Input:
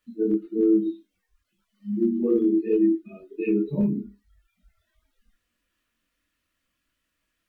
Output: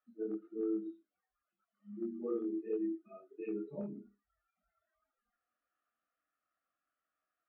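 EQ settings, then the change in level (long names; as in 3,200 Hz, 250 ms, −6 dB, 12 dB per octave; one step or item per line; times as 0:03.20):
pair of resonant band-passes 970 Hz, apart 0.71 octaves
spectral tilt −1.5 dB per octave
+1.0 dB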